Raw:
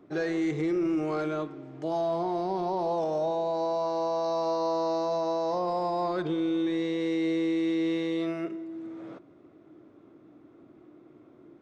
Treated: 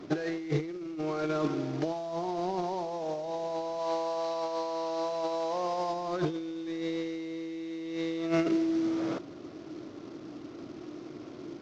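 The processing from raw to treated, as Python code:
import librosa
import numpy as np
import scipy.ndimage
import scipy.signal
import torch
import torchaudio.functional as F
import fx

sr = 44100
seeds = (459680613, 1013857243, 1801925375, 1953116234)

y = fx.cvsd(x, sr, bps=32000)
y = fx.low_shelf(y, sr, hz=240.0, db=-9.0, at=(3.79, 5.93))
y = fx.over_compress(y, sr, threshold_db=-34.0, ratio=-0.5)
y = y * 10.0 ** (4.0 / 20.0)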